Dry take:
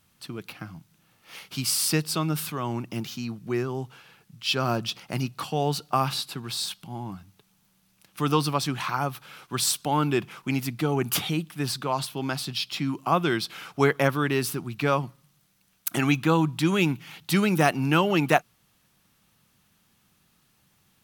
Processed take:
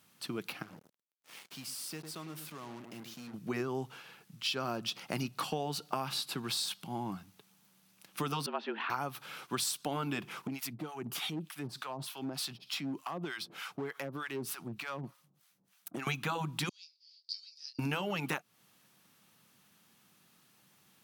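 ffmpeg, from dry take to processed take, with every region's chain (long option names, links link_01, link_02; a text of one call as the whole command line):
ffmpeg -i in.wav -filter_complex "[0:a]asettb=1/sr,asplit=3[link_01][link_02][link_03];[link_01]atrim=end=0.624[link_04];[link_02]atrim=start=0.62:end=3.34,asetpts=PTS-STARTPTS,afade=type=in:duration=0.004:curve=qsin,afade=type=out:start_time=2.716:duration=0.004:curve=qsin,asplit=2[link_05][link_06];[link_06]adelay=104,lowpass=frequency=980:poles=1,volume=-10.5dB,asplit=2[link_07][link_08];[link_08]adelay=104,lowpass=frequency=980:poles=1,volume=0.2,asplit=2[link_09][link_10];[link_10]adelay=104,lowpass=frequency=980:poles=1,volume=0.2[link_11];[link_05][link_07][link_09][link_11]amix=inputs=4:normalize=0,atrim=end_sample=119952,acompressor=threshold=-54dB:ratio=2:attack=3.2:release=140:knee=1:detection=peak,acrusher=bits=7:mix=0:aa=0.5[link_12];[link_03]atrim=start=3.336[link_13];[link_04][link_12]acrossfade=duration=0.004:curve1=hsin:curve2=qsin[link_14];[link_14][link_13]acrossfade=duration=0.004:curve1=qsin:curve2=hsin,asettb=1/sr,asplit=3[link_15][link_16][link_17];[link_15]atrim=end=8.464[link_18];[link_16]atrim=start=8.46:end=8.9,asetpts=PTS-STARTPTS,afade=type=in:duration=0.004:curve=qsin,afade=type=out:start_time=0.436:duration=0.004:curve=qsin,afreqshift=95,highpass=440,equalizer=frequency=490:width_type=q:width=4:gain=-6,equalizer=frequency=1200:width_type=q:width=4:gain=-9,equalizer=frequency=2200:width_type=q:width=4:gain=-6,lowpass=frequency=2700:width=0.5412,lowpass=frequency=2700:width=1.3066[link_19];[link_17]atrim=start=8.896[link_20];[link_18][link_19]acrossfade=duration=0.004:curve1=hsin:curve2=qsin[link_21];[link_21][link_20]acrossfade=duration=0.004:curve1=qsin:curve2=hsin,asettb=1/sr,asplit=3[link_22][link_23][link_24];[link_22]atrim=end=10.474[link_25];[link_23]atrim=start=10.47:end=16.07,asetpts=PTS-STARTPTS,afade=type=in:duration=0.004:curve=qsin,afade=type=out:start_time=5.596:duration=0.004:curve=qsin,acompressor=threshold=-29dB:ratio=5:attack=3.2:release=140:knee=1:detection=peak,acrossover=split=750[link_26][link_27];[link_26]aeval=exprs='val(0)*(1-1/2+1/2*cos(2*PI*3.3*n/s))':channel_layout=same[link_28];[link_27]aeval=exprs='val(0)*(1-1/2-1/2*cos(2*PI*3.3*n/s))':channel_layout=same[link_29];[link_28][link_29]amix=inputs=2:normalize=0,asoftclip=type=hard:threshold=-30.5dB[link_30];[link_24]atrim=start=16.066[link_31];[link_25][link_30]acrossfade=duration=0.004:curve1=hsin:curve2=qsin[link_32];[link_32][link_31]acrossfade=duration=0.004:curve1=qsin:curve2=hsin,asettb=1/sr,asplit=3[link_33][link_34][link_35];[link_33]atrim=end=16.694[link_36];[link_34]atrim=start=16.69:end=17.79,asetpts=PTS-STARTPTS,afade=type=in:duration=0.004:curve=qsin,afade=type=out:start_time=1.096:duration=0.004:curve=qsin,asuperpass=centerf=4800:order=4:qfactor=7,asplit=2[link_37][link_38];[link_38]adelay=25,volume=-7.5dB[link_39];[link_37][link_39]amix=inputs=2:normalize=0,atrim=end_sample=48510[link_40];[link_35]atrim=start=17.786[link_41];[link_36][link_40]acrossfade=duration=0.004:curve1=hsin:curve2=qsin[link_42];[link_42][link_41]acrossfade=duration=0.004:curve1=qsin:curve2=hsin,highpass=170,afftfilt=real='re*lt(hypot(re,im),0.501)':imag='im*lt(hypot(re,im),0.501)':win_size=1024:overlap=0.75,acompressor=threshold=-31dB:ratio=10" out.wav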